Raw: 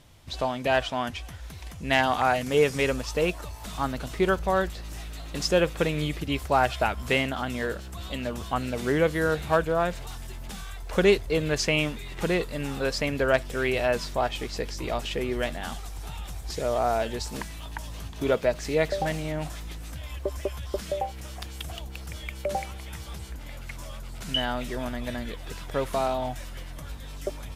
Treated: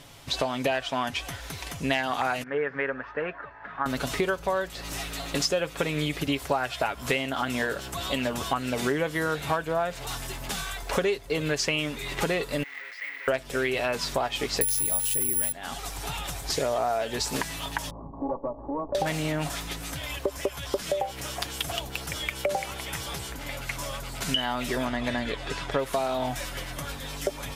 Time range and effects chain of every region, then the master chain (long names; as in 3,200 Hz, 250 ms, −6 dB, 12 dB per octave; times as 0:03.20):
0:02.43–0:03.86: transistor ladder low-pass 1,800 Hz, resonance 70% + low-shelf EQ 110 Hz −9.5 dB
0:12.63–0:13.28: sign of each sample alone + resonant band-pass 2,000 Hz, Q 16 + bad sample-rate conversion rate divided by 2×, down none, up hold
0:14.61–0:15.52: bass and treble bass +11 dB, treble +10 dB + bad sample-rate conversion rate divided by 4×, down none, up zero stuff
0:17.90–0:18.95: lower of the sound and its delayed copy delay 3.5 ms + Chebyshev low-pass filter 1,100 Hz, order 6 + downward compressor 2.5 to 1, threshold −39 dBFS
0:24.85–0:25.79: high-frequency loss of the air 61 metres + notch filter 5,800 Hz, Q 22
whole clip: low-shelf EQ 180 Hz −10.5 dB; comb filter 7.2 ms, depth 42%; downward compressor 6 to 1, threshold −33 dBFS; level +9 dB